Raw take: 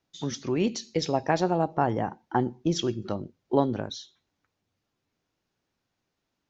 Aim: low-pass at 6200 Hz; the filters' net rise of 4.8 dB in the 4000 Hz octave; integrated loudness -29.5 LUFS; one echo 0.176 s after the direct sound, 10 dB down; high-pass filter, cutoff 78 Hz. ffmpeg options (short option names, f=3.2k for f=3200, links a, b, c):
-af "highpass=78,lowpass=6.2k,equalizer=f=4k:t=o:g=7,aecho=1:1:176:0.316,volume=-2dB"